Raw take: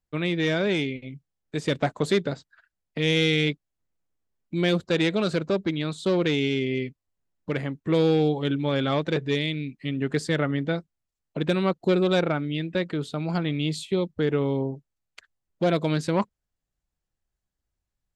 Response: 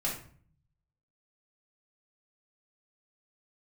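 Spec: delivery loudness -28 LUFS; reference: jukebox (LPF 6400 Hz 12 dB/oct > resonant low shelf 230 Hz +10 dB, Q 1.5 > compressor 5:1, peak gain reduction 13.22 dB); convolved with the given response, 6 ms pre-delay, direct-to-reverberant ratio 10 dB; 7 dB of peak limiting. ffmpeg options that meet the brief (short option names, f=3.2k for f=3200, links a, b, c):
-filter_complex "[0:a]alimiter=limit=-17dB:level=0:latency=1,asplit=2[a][b];[1:a]atrim=start_sample=2205,adelay=6[c];[b][c]afir=irnorm=-1:irlink=0,volume=-15dB[d];[a][d]amix=inputs=2:normalize=0,lowpass=6.4k,lowshelf=f=230:t=q:w=1.5:g=10,acompressor=threshold=-26dB:ratio=5,volume=1.5dB"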